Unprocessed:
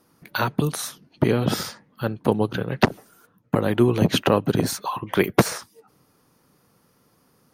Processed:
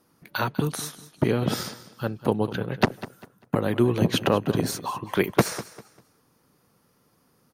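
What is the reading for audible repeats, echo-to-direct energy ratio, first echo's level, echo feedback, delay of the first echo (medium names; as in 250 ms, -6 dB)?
2, -15.5 dB, -16.0 dB, 29%, 198 ms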